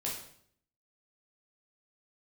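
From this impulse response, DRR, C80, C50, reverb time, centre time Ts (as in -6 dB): -4.5 dB, 8.0 dB, 4.0 dB, 0.65 s, 38 ms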